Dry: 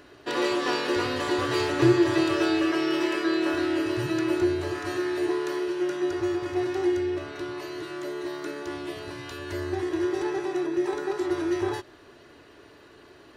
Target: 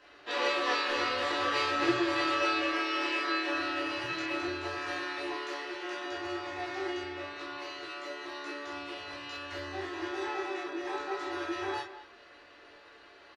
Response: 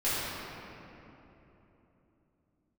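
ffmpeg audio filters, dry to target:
-filter_complex "[0:a]acrossover=split=570 6200:gain=0.224 1 0.112[link_01][link_02][link_03];[link_01][link_02][link_03]amix=inputs=3:normalize=0,asplit=2[link_04][link_05];[link_05]adelay=210,highpass=300,lowpass=3400,asoftclip=type=hard:threshold=-24.5dB,volume=-13dB[link_06];[link_04][link_06]amix=inputs=2:normalize=0[link_07];[1:a]atrim=start_sample=2205,atrim=end_sample=3087[link_08];[link_07][link_08]afir=irnorm=-1:irlink=0,volume=-5.5dB"

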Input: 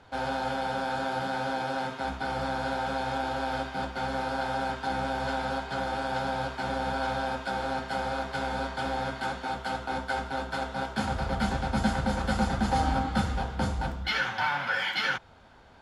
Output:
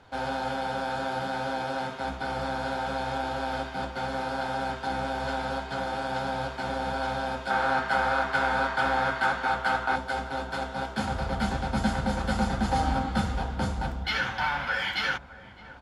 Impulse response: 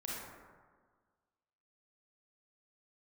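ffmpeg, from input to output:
-filter_complex "[0:a]asettb=1/sr,asplit=3[link_01][link_02][link_03];[link_01]atrim=end=7.504[link_04];[link_02]atrim=start=7.5:end=9.96,asetpts=PTS-STARTPTS,afade=type=in:duration=0.004:curve=qsin,afade=type=out:start_time=2.456:duration=0.004:curve=qsin,equalizer=frequency=1400:width_type=o:width=1.8:gain=10[link_05];[link_03]atrim=start=9.956[link_06];[link_04][link_05]acrossfade=duration=0.004:curve1=hsin:curve2=qsin[link_07];[link_07][link_06]acrossfade=duration=0.004:curve1=qsin:curve2=hsin,asplit=2[link_08][link_09];[link_09]adelay=612,lowpass=frequency=1000:poles=1,volume=-15dB,asplit=2[link_10][link_11];[link_11]adelay=612,lowpass=frequency=1000:poles=1,volume=0.53,asplit=2[link_12][link_13];[link_13]adelay=612,lowpass=frequency=1000:poles=1,volume=0.53,asplit=2[link_14][link_15];[link_15]adelay=612,lowpass=frequency=1000:poles=1,volume=0.53,asplit=2[link_16][link_17];[link_17]adelay=612,lowpass=frequency=1000:poles=1,volume=0.53[link_18];[link_08][link_10][link_12][link_14][link_16][link_18]amix=inputs=6:normalize=0"

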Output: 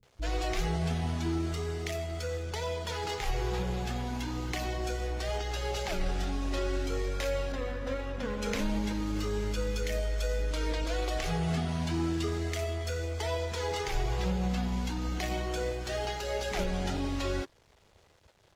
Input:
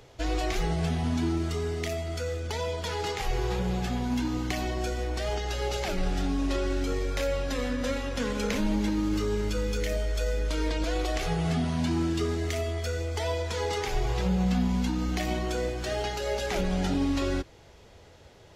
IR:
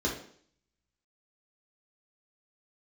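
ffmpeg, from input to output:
-filter_complex "[0:a]asettb=1/sr,asplit=3[link_01][link_02][link_03];[link_01]atrim=end=7.494[link_04];[link_02]atrim=start=7.49:end=8.39,asetpts=PTS-STARTPTS,afade=type=in:duration=0.004:curve=qsin,afade=type=out:start_time=0.896:duration=0.004:curve=qsin,lowpass=frequency=1700:poles=1[link_05];[link_03]atrim=start=8.386[link_06];[link_04][link_05]acrossfade=duration=0.004:curve1=hsin:curve2=qsin[link_07];[link_07][link_06]acrossfade=duration=0.004:curve1=qsin:curve2=hsin,aeval=exprs='sgn(val(0))*max(abs(val(0))-0.00224,0)':channel_layout=same,acrossover=split=260[link_08][link_09];[link_09]adelay=30[link_10];[link_08][link_10]amix=inputs=2:normalize=0,volume=-2dB"

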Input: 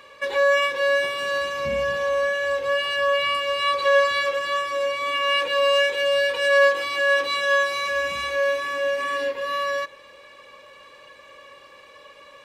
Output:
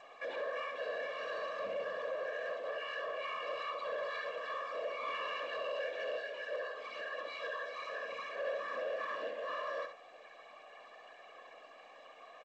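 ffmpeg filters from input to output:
ffmpeg -i in.wav -filter_complex "[0:a]bandreject=frequency=470:width=12,aecho=1:1:6.9:0.31,alimiter=limit=-20dB:level=0:latency=1:release=442,aeval=exprs='val(0)+0.00355*sin(2*PI*710*n/s)':channel_layout=same,asplit=3[link_01][link_02][link_03];[link_01]afade=type=out:start_time=6.18:duration=0.02[link_04];[link_02]flanger=delay=22.5:depth=2:speed=1.5,afade=type=in:start_time=6.18:duration=0.02,afade=type=out:start_time=8.36:duration=0.02[link_05];[link_03]afade=type=in:start_time=8.36:duration=0.02[link_06];[link_04][link_05][link_06]amix=inputs=3:normalize=0,afftfilt=real='hypot(re,im)*cos(2*PI*random(0))':imag='hypot(re,im)*sin(2*PI*random(1))':win_size=512:overlap=0.75,asoftclip=type=tanh:threshold=-29dB,highpass=250,lowpass=3400,aecho=1:1:67|134|201:0.398|0.0756|0.0144,volume=-4dB" -ar 16000 -c:a g722 out.g722

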